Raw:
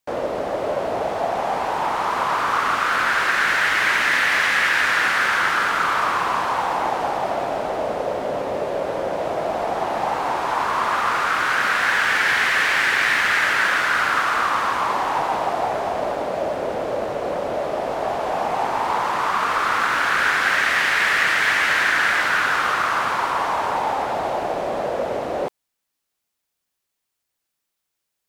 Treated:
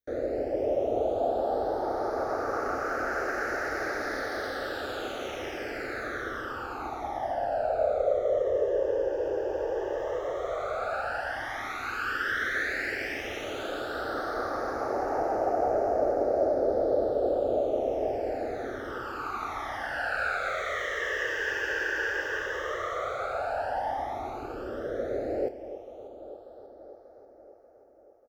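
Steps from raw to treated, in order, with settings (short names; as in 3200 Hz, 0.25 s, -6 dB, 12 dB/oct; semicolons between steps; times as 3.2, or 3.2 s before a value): resonant high shelf 1700 Hz -10.5 dB, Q 1.5; fixed phaser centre 420 Hz, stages 4; doubler 30 ms -13 dB; echo with dull and thin repeats by turns 0.294 s, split 840 Hz, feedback 75%, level -13 dB; phaser stages 12, 0.08 Hz, lowest notch 220–3300 Hz; bell 8500 Hz -10.5 dB 0.41 oct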